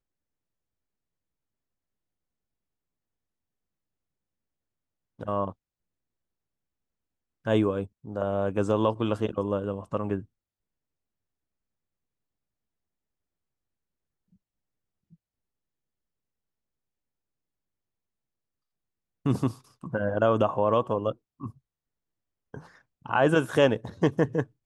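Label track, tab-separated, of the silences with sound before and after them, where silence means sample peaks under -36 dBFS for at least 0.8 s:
5.510000	7.460000	silence
10.210000	19.260000	silence
21.500000	22.540000	silence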